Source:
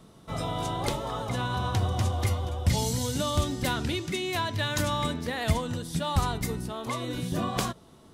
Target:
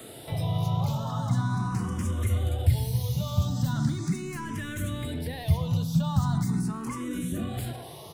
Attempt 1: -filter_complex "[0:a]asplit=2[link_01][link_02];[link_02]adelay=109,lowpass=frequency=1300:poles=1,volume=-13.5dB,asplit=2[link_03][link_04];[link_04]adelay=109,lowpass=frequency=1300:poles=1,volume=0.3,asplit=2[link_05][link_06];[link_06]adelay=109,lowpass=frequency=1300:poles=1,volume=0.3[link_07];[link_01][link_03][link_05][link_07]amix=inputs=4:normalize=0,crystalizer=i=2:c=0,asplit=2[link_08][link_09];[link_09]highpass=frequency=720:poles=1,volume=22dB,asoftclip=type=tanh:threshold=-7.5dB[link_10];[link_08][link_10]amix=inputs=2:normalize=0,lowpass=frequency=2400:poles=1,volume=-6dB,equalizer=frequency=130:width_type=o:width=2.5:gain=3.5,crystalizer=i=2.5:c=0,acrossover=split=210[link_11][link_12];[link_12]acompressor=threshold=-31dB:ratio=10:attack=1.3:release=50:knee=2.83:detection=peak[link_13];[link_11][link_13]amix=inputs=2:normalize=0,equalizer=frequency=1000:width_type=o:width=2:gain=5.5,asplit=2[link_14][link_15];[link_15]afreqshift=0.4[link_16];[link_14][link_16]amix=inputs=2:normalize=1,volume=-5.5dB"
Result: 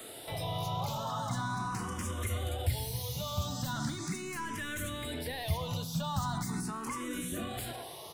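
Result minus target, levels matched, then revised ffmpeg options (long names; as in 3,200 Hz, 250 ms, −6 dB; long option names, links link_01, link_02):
125 Hz band −3.5 dB
-filter_complex "[0:a]asplit=2[link_01][link_02];[link_02]adelay=109,lowpass=frequency=1300:poles=1,volume=-13.5dB,asplit=2[link_03][link_04];[link_04]adelay=109,lowpass=frequency=1300:poles=1,volume=0.3,asplit=2[link_05][link_06];[link_06]adelay=109,lowpass=frequency=1300:poles=1,volume=0.3[link_07];[link_01][link_03][link_05][link_07]amix=inputs=4:normalize=0,crystalizer=i=2:c=0,asplit=2[link_08][link_09];[link_09]highpass=frequency=720:poles=1,volume=22dB,asoftclip=type=tanh:threshold=-7.5dB[link_10];[link_08][link_10]amix=inputs=2:normalize=0,lowpass=frequency=2400:poles=1,volume=-6dB,equalizer=frequency=130:width_type=o:width=2.5:gain=15.5,crystalizer=i=2.5:c=0,acrossover=split=210[link_11][link_12];[link_12]acompressor=threshold=-31dB:ratio=10:attack=1.3:release=50:knee=2.83:detection=peak[link_13];[link_11][link_13]amix=inputs=2:normalize=0,equalizer=frequency=1000:width_type=o:width=2:gain=5.5,asplit=2[link_14][link_15];[link_15]afreqshift=0.4[link_16];[link_14][link_16]amix=inputs=2:normalize=1,volume=-5.5dB"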